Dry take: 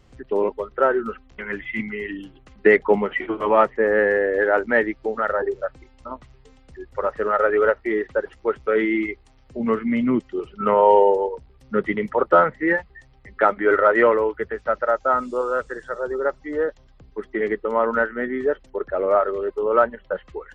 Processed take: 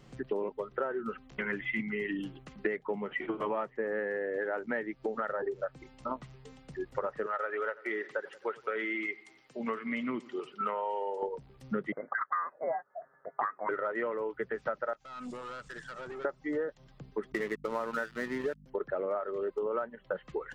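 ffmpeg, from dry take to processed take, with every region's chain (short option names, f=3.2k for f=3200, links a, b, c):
-filter_complex "[0:a]asettb=1/sr,asplit=3[a][b][c];[a]atrim=end=7.264[d];[b]atrim=start=7.26:end=11.23,asetpts=PTS-STARTPTS,afade=t=in:d=0.004:c=qsin,afade=t=out:st=3.966:d=0.004:c=qsin,highpass=f=1.2k:p=1,aecho=1:1:89|178|267|356:0.0708|0.0418|0.0246|0.0145,atrim=end_sample=175077[e];[c]atrim=start=11.226[f];[d][e]acrossfade=d=0.004:c1=hsin:c2=qsin[g];[g][f]acrossfade=d=0.004:c1=qsin:c2=hsin,asettb=1/sr,asplit=3[h][i][j];[h]atrim=end=11.924[k];[i]atrim=start=11.92:end=13.69,asetpts=PTS-STARTPTS,afade=t=in:d=0.004:c=qsin,afade=t=out:st=1.766:d=0.004:c=qsin,highpass=f=970:w=0.5412,highpass=f=970:w=1.3066,acontrast=37,lowpass=f=2.1k:t=q:w=0.5098,lowpass=f=2.1k:t=q:w=0.6013,lowpass=f=2.1k:t=q:w=0.9,lowpass=f=2.1k:t=q:w=2.563,afreqshift=-2500[l];[j]atrim=start=13.686[m];[k][l]acrossfade=d=0.004:c1=hsin:c2=qsin[n];[n][m]acrossfade=d=0.004:c1=qsin:c2=hsin,asettb=1/sr,asplit=3[o][p][q];[o]atrim=end=14.934[r];[p]atrim=start=14.93:end=16.25,asetpts=PTS-STARTPTS,afade=t=in:d=0.004:c=qsin,afade=t=out:st=1.316:d=0.004:c=qsin,equalizer=f=450:t=o:w=1.2:g=-11,acompressor=threshold=-33dB:ratio=16:attack=3.2:release=140:knee=1:detection=peak,aeval=exprs='(tanh(79.4*val(0)+0.35)-tanh(0.35))/79.4':c=same[s];[q]atrim=start=16.246[t];[r][s]acrossfade=d=0.004:c1=hsin:c2=qsin[u];[u][t]acrossfade=d=0.004:c1=qsin:c2=hsin,asettb=1/sr,asplit=3[v][w][x];[v]atrim=end=17.324[y];[w]atrim=start=17.32:end=18.66,asetpts=PTS-STARTPTS,afade=t=in:d=0.004:c=qsin,afade=t=out:st=1.336:d=0.004:c=qsin,equalizer=f=1.8k:t=o:w=1.5:g=3.5,aeval=exprs='sgn(val(0))*max(abs(val(0))-0.0224,0)':c=same,aeval=exprs='val(0)+0.00708*(sin(2*PI*50*n/s)+sin(2*PI*2*50*n/s)/2+sin(2*PI*3*50*n/s)/3+sin(2*PI*4*50*n/s)/4+sin(2*PI*5*50*n/s)/5)':c=same[z];[x]atrim=start=18.656[aa];[y][z]acrossfade=d=0.004:c1=hsin:c2=qsin[ab];[ab][aa]acrossfade=d=0.004:c1=qsin:c2=hsin,lowshelf=f=110:t=q:w=3:g=-7.5,acompressor=threshold=-30dB:ratio=12"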